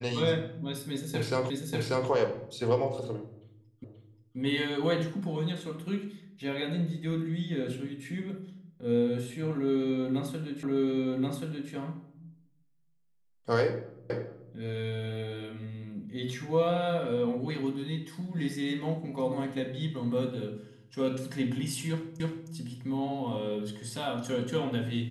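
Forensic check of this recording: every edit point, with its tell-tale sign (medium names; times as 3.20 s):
1.50 s: repeat of the last 0.59 s
3.84 s: repeat of the last 0.53 s
10.63 s: repeat of the last 1.08 s
14.10 s: repeat of the last 0.43 s
22.20 s: repeat of the last 0.31 s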